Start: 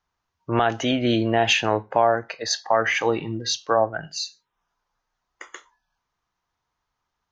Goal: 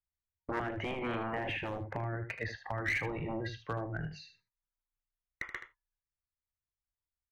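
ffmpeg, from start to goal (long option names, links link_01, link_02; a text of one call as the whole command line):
ffmpeg -i in.wav -filter_complex "[0:a]agate=range=-25dB:threshold=-47dB:ratio=16:detection=peak,acrossover=split=120[link_01][link_02];[link_01]aeval=exprs='0.0376*sin(PI/2*7.94*val(0)/0.0376)':channel_layout=same[link_03];[link_02]acompressor=threshold=-29dB:ratio=12[link_04];[link_03][link_04]amix=inputs=2:normalize=0,lowpass=frequency=2100:width_type=q:width=3.9,aeval=exprs='clip(val(0),-1,0.0891)':channel_layout=same,aecho=1:1:77:0.316,volume=-8dB" out.wav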